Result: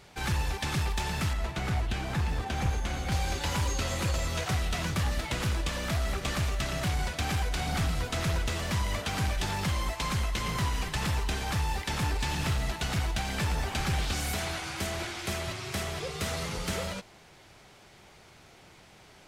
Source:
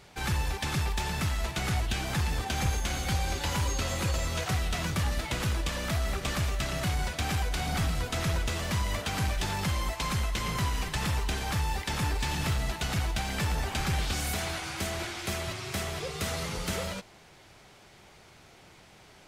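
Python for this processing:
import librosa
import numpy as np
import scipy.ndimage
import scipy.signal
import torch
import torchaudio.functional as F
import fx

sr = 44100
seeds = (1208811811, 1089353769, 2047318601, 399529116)

y = fx.high_shelf(x, sr, hz=3000.0, db=-8.5, at=(1.33, 3.12))
y = fx.doppler_dist(y, sr, depth_ms=0.14)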